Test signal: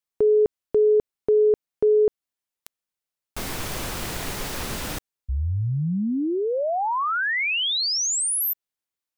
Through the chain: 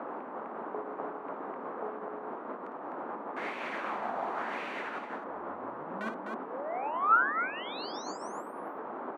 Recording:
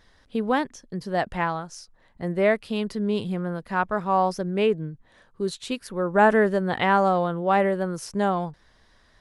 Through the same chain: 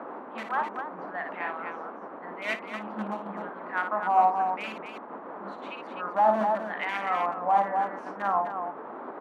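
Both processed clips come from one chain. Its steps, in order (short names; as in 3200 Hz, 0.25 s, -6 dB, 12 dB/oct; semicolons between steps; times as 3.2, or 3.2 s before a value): EQ curve 220 Hz 0 dB, 310 Hz -30 dB, 650 Hz -3 dB, 3400 Hz -14 dB; overdrive pedal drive 19 dB, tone 2300 Hz, clips at -4.5 dBFS; bell 220 Hz +11 dB 0.35 oct; in parallel at -11 dB: wrapped overs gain 10.5 dB; on the sum: wah 0.91 Hz 760–2400 Hz, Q 2.9; HPF 150 Hz; on a send: loudspeakers at several distances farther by 19 m -7 dB, 87 m -6 dB; on the sum: band noise 220–1200 Hz -37 dBFS; notch 5100 Hz, Q 12; noise-modulated level 12 Hz, depth 60%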